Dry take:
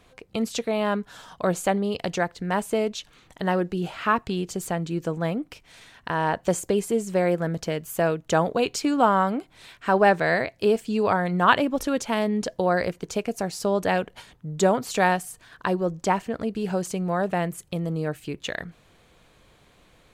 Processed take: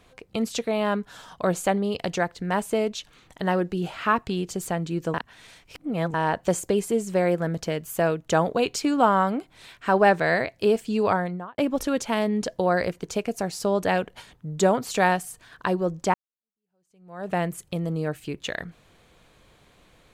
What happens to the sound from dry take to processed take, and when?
0:05.14–0:06.14: reverse
0:11.09–0:11.58: fade out and dull
0:16.14–0:17.33: fade in exponential

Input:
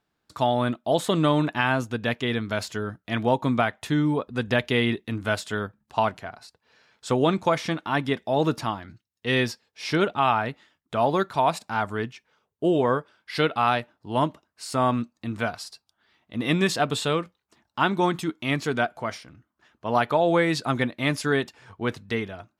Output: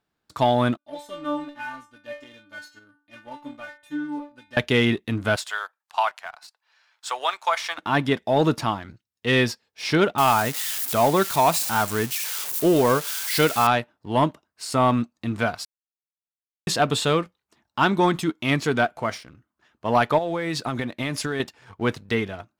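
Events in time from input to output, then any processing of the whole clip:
0:00.77–0:04.57: stiff-string resonator 290 Hz, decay 0.42 s, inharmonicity 0.002
0:05.36–0:07.78: high-pass filter 790 Hz 24 dB per octave
0:10.18–0:13.67: spike at every zero crossing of −22 dBFS
0:15.65–0:16.67: silence
0:20.18–0:21.40: downward compressor 12 to 1, threshold −26 dBFS
whole clip: leveller curve on the samples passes 1

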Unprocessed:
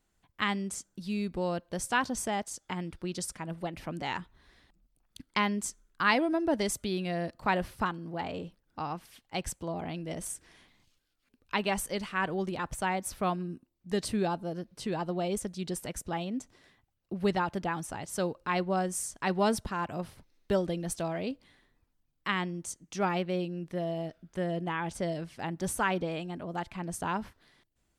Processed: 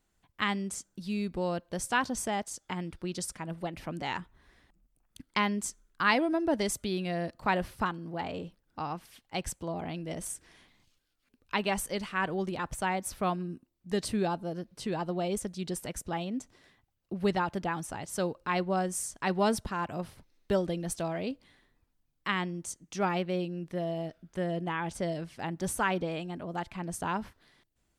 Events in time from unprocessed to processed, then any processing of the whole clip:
0:04.20–0:05.24: parametric band 4,100 Hz −6 dB

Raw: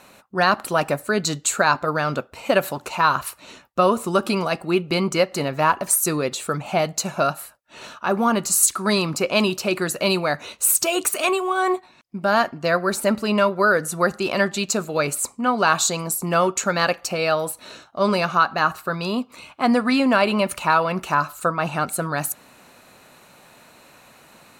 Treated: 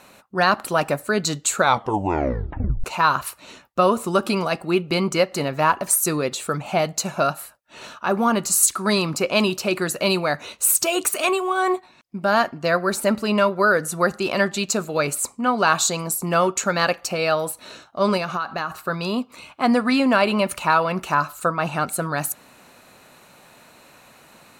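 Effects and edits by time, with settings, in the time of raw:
0:01.55: tape stop 1.29 s
0:18.17–0:18.82: downward compressor, threshold −21 dBFS

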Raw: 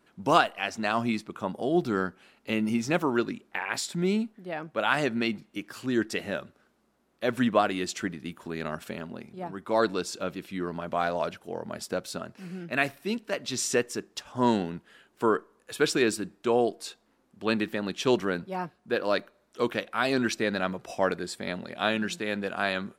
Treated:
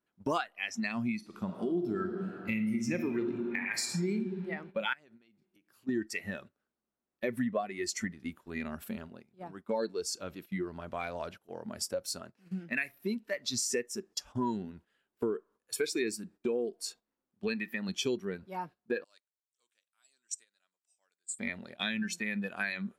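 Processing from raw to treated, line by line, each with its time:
0:01.16–0:04.12: thrown reverb, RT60 2.5 s, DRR 3 dB
0:04.93–0:05.89: downward compressor, threshold −43 dBFS
0:17.48–0:17.89: low-shelf EQ 230 Hz −6 dB
0:19.04–0:21.39: resonant band-pass 7,900 Hz, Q 4
whole clip: noise reduction from a noise print of the clip's start 15 dB; noise gate −53 dBFS, range −13 dB; downward compressor 4 to 1, threshold −39 dBFS; level +7 dB

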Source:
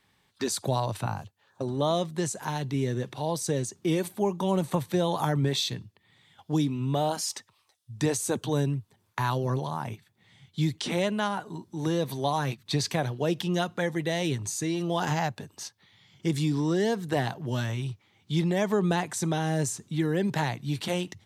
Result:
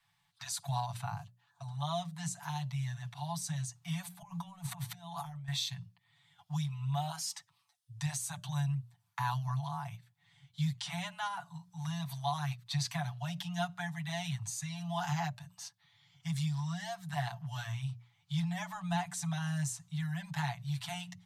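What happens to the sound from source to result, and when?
0:04.22–0:05.48: compressor whose output falls as the input rises −36 dBFS
whole clip: Chebyshev band-stop filter 180–670 Hz, order 5; mains-hum notches 60/120/180/240/300/360/420/480/540/600 Hz; comb filter 7 ms, depth 77%; level −8.5 dB

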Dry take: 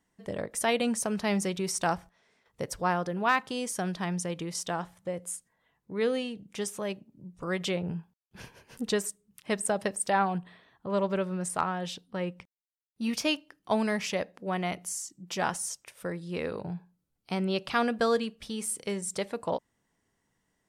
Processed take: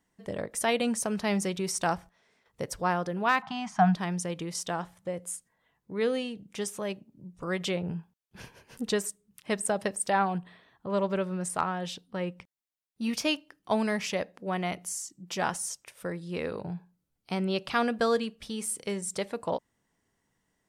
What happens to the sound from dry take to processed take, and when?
0:03.42–0:03.95: drawn EQ curve 110 Hz 0 dB, 190 Hz +10 dB, 490 Hz −27 dB, 710 Hz +15 dB, 6,500 Hz −9 dB, 11,000 Hz −28 dB

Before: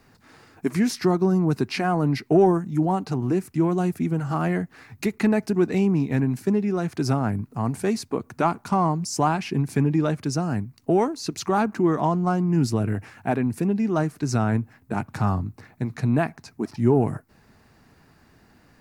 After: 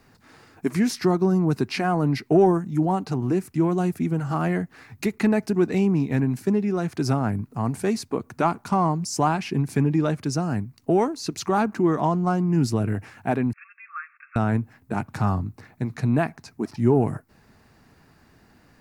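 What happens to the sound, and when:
0:13.53–0:14.36: linear-phase brick-wall band-pass 1,100–2,700 Hz

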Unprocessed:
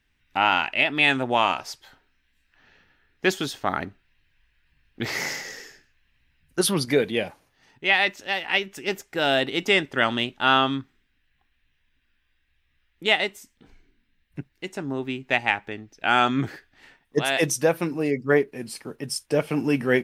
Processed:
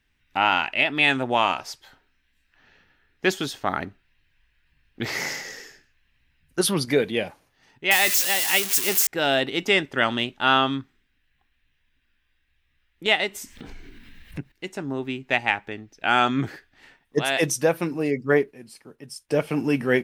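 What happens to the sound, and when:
0:07.91–0:09.07: spike at every zero crossing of −13.5 dBFS
0:13.06–0:14.52: upward compression, threshold −25 dBFS
0:18.52–0:19.29: clip gain −9.5 dB

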